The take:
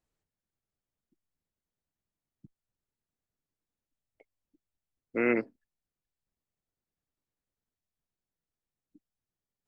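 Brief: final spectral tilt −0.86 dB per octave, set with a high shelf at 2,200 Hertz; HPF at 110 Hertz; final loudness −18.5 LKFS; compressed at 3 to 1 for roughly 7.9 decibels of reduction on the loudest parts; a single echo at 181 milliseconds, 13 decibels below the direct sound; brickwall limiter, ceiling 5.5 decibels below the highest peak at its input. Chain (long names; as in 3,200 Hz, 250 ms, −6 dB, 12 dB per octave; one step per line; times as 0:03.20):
high-pass filter 110 Hz
high-shelf EQ 2,200 Hz +7 dB
downward compressor 3 to 1, threshold −31 dBFS
brickwall limiter −26 dBFS
single-tap delay 181 ms −13 dB
level +22 dB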